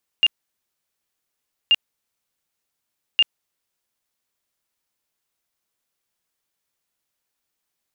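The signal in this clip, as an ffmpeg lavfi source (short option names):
-f lavfi -i "aevalsrc='0.282*sin(2*PI*2810*mod(t,1.48))*lt(mod(t,1.48),100/2810)':d=4.44:s=44100"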